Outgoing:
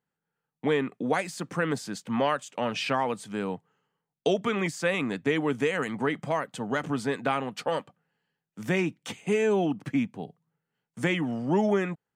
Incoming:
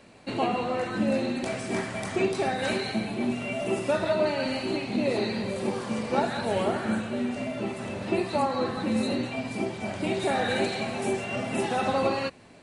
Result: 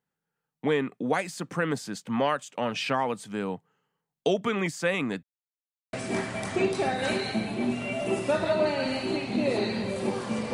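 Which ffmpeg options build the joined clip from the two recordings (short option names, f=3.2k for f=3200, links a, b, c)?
-filter_complex "[0:a]apad=whole_dur=10.53,atrim=end=10.53,asplit=2[a][b];[a]atrim=end=5.23,asetpts=PTS-STARTPTS,afade=t=out:st=5.226:d=0.004:c=hsin[c];[b]atrim=start=5.23:end=5.93,asetpts=PTS-STARTPTS,volume=0[d];[1:a]atrim=start=1.53:end=6.13,asetpts=PTS-STARTPTS,afade=t=in:d=0.004:c=hsin[e];[c][d][e]concat=n=3:v=0:a=1"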